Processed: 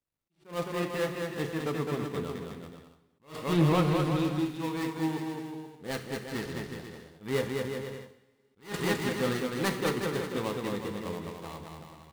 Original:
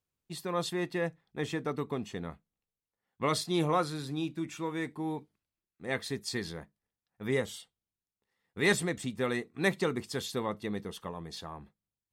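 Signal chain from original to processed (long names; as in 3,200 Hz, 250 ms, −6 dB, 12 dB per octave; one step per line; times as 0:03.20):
gap after every zero crossing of 0.2 ms
0:03.49–0:03.95: bass and treble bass +9 dB, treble −8 dB
on a send: bouncing-ball delay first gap 210 ms, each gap 0.75×, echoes 5
on the sum: coupled-rooms reverb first 0.67 s, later 3.2 s, from −26 dB, DRR 6.5 dB
level that may rise only so fast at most 200 dB per second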